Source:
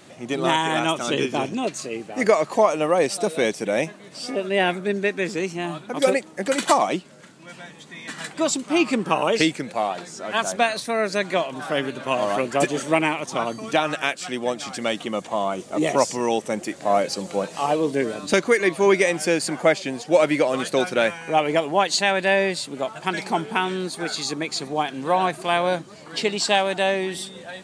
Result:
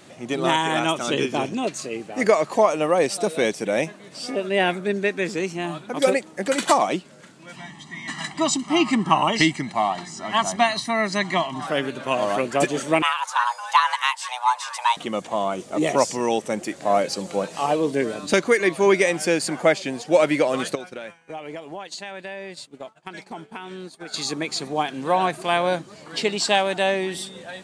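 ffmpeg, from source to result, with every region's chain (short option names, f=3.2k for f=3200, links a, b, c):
-filter_complex "[0:a]asettb=1/sr,asplit=3[a][b][c];[a]atrim=end=7.564[d];[b]atrim=start=7.56:end=11.67,asetpts=PTS-STARTPTS,afade=t=in:d=0.004:c=qsin,afade=t=out:st=4.106:d=0.004:c=qsin,lowpass=8.1k,aecho=1:1:1:0.95,atrim=end_sample=181251[e];[c]atrim=start=11.666[f];[d][e]acrossfade=d=0.004:c1=hsin:c2=qsin[g];[g][f]acrossfade=d=0.004:c1=qsin:c2=hsin,asettb=1/sr,asplit=3[h][i][j];[h]atrim=end=13.024[k];[i]atrim=start=13.02:end=14.97,asetpts=PTS-STARTPTS,afade=t=in:d=0.004:c=qsin,afade=t=out:st=1.946:d=0.004:c=qsin,lowshelf=f=380:t=q:w=3:g=-10,afreqshift=380[l];[j]atrim=start=14.966[m];[k][l]acrossfade=d=0.004:c1=hsin:c2=qsin[n];[n][m]acrossfade=d=0.004:c1=qsin:c2=hsin,asettb=1/sr,asplit=3[o][p][q];[o]atrim=end=20.754[r];[p]atrim=start=20.75:end=24.14,asetpts=PTS-STARTPTS,afade=t=in:d=0.004:c=qsin,afade=t=out:st=3.386:d=0.004:c=qsin,agate=range=-33dB:threshold=-24dB:ratio=3:release=100:detection=peak,acompressor=threshold=-32dB:ratio=5:attack=3.2:release=140:knee=1:detection=peak,highshelf=f=11k:g=-4.5[s];[q]atrim=start=24.136[t];[r][s]acrossfade=d=0.004:c1=hsin:c2=qsin[u];[u][t]acrossfade=d=0.004:c1=qsin:c2=hsin"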